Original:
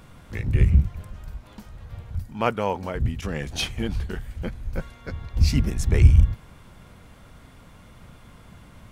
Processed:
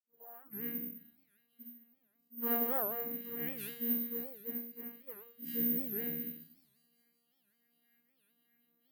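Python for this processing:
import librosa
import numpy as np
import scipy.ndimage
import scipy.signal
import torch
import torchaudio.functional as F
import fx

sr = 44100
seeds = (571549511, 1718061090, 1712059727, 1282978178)

p1 = fx.tape_start_head(x, sr, length_s=0.65)
p2 = fx.high_shelf(p1, sr, hz=5900.0, db=-6.5)
p3 = fx.resonator_bank(p2, sr, root=50, chord='fifth', decay_s=0.55)
p4 = fx.noise_reduce_blind(p3, sr, reduce_db=19)
p5 = fx.vocoder(p4, sr, bands=8, carrier='saw', carrier_hz=235.0)
p6 = p5 + fx.echo_wet_highpass(p5, sr, ms=187, feedback_pct=76, hz=5000.0, wet_db=-9.5, dry=0)
p7 = fx.room_shoebox(p6, sr, seeds[0], volume_m3=53.0, walls='mixed', distance_m=2.5)
p8 = (np.kron(scipy.signal.resample_poly(p7, 1, 3), np.eye(3)[0]) * 3)[:len(p7)]
p9 = fx.record_warp(p8, sr, rpm=78.0, depth_cents=250.0)
y = p9 * 10.0 ** (-5.5 / 20.0)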